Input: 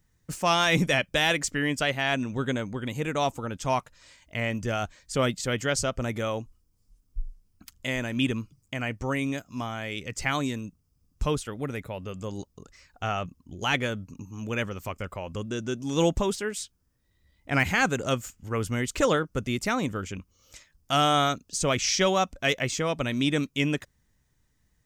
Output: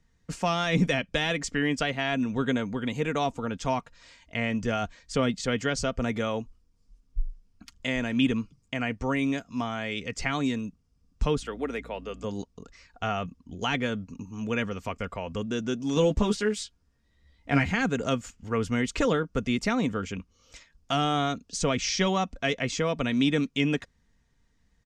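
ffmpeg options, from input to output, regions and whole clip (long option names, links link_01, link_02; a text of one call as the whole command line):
ffmpeg -i in.wav -filter_complex "[0:a]asettb=1/sr,asplit=3[link_01][link_02][link_03];[link_01]atrim=end=11.414[link_04];[link_02]atrim=start=11.41:end=12.24,asetpts=PTS-STARTPTS,afade=type=in:duration=0.004:curve=qsin,afade=type=out:start_time=0.826:duration=0.004:curve=qsin,highpass=frequency=250:width=0.5412,highpass=frequency=250:width=1.3066,aeval=exprs='val(0)+0.00398*(sin(2*PI*60*n/s)+sin(2*PI*2*60*n/s)/2+sin(2*PI*3*60*n/s)/3+sin(2*PI*4*60*n/s)/4+sin(2*PI*5*60*n/s)/5)':channel_layout=same[link_05];[link_03]atrim=start=12.236[link_06];[link_04][link_05]acrossfade=duration=0.004:curve1=hsin:curve2=qsin[link_07];[link_07][link_06]acrossfade=duration=0.004:curve1=qsin:curve2=hsin,asettb=1/sr,asplit=3[link_08][link_09][link_10];[link_08]atrim=end=15.954[link_11];[link_09]atrim=start=15.95:end=17.67,asetpts=PTS-STARTPTS,afade=type=in:duration=0.004:curve=qsin,afade=type=out:start_time=1.716:duration=0.004:curve=qsin,acrusher=bits=8:mode=log:mix=0:aa=0.000001,asplit=2[link_12][link_13];[link_13]adelay=14,volume=-4dB[link_14];[link_12][link_14]amix=inputs=2:normalize=0,atrim=end_sample=75852[link_15];[link_10]atrim=start=17.666[link_16];[link_11][link_15]acrossfade=duration=0.004:curve1=hsin:curve2=qsin[link_17];[link_17][link_16]acrossfade=duration=0.004:curve1=qsin:curve2=hsin,lowpass=5800,aecho=1:1:4.3:0.37,acrossover=split=360[link_18][link_19];[link_19]acompressor=threshold=-28dB:ratio=3[link_20];[link_18][link_20]amix=inputs=2:normalize=0,volume=1.5dB" out.wav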